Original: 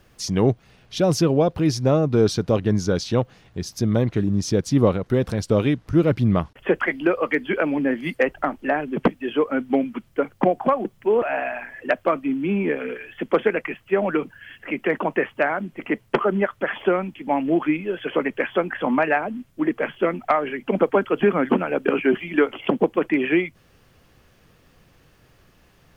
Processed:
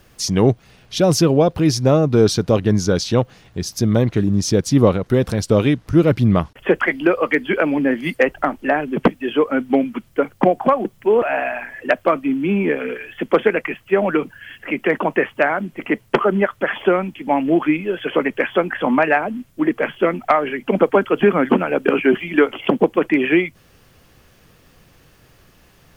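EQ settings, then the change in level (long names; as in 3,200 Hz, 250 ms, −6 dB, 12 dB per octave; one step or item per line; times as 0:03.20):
high-shelf EQ 5,200 Hz +5 dB
+4.0 dB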